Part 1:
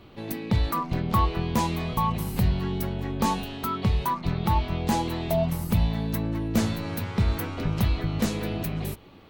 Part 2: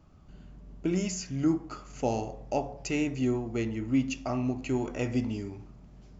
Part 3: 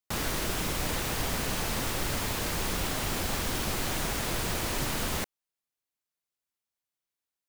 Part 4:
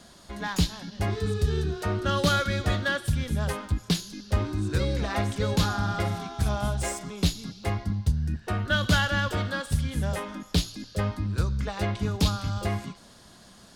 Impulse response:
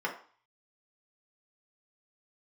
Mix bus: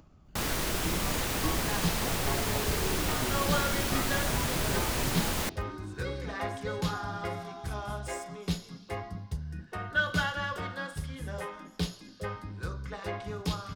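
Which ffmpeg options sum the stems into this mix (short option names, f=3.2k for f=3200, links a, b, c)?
-filter_complex "[0:a]adelay=300,volume=-15.5dB[a];[1:a]acompressor=mode=upward:threshold=-34dB:ratio=2.5,volume=-12.5dB,asplit=2[b][c];[2:a]adelay=250,volume=0dB[d];[3:a]adelay=1250,volume=-12dB,asplit=2[e][f];[f]volume=-3dB[g];[c]apad=whole_len=422938[h];[a][h]sidechaingate=range=-33dB:threshold=-51dB:ratio=16:detection=peak[i];[4:a]atrim=start_sample=2205[j];[g][j]afir=irnorm=-1:irlink=0[k];[i][b][d][e][k]amix=inputs=5:normalize=0"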